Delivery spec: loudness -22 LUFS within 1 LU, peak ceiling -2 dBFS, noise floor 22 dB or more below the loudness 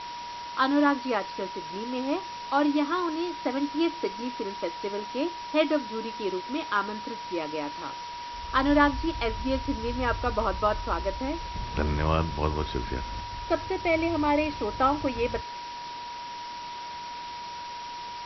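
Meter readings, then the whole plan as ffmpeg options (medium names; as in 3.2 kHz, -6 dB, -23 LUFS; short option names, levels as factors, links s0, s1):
steady tone 960 Hz; tone level -36 dBFS; noise floor -38 dBFS; noise floor target -51 dBFS; loudness -29.0 LUFS; peak level -8.0 dBFS; loudness target -22.0 LUFS
-> -af "bandreject=f=960:w=30"
-af "afftdn=nr=13:nf=-38"
-af "volume=2.24,alimiter=limit=0.794:level=0:latency=1"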